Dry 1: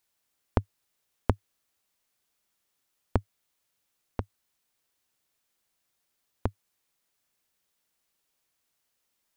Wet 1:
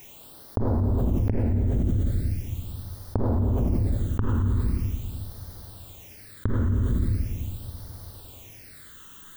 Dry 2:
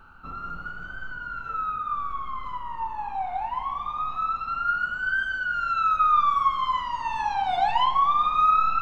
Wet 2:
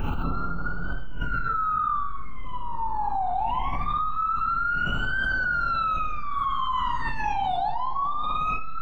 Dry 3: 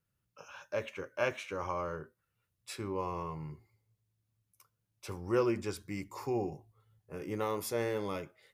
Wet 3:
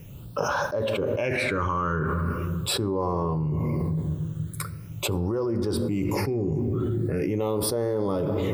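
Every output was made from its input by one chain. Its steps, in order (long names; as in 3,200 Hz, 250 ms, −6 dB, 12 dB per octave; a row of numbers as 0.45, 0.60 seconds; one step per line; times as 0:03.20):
all-pass phaser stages 8, 0.41 Hz, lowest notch 660–2,500 Hz
parametric band 6,800 Hz −9 dB 2.7 octaves
rectangular room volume 1,400 cubic metres, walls mixed, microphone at 0.3 metres
envelope flattener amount 100%
loudness normalisation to −27 LKFS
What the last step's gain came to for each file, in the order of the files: −2.5, −4.5, +0.5 decibels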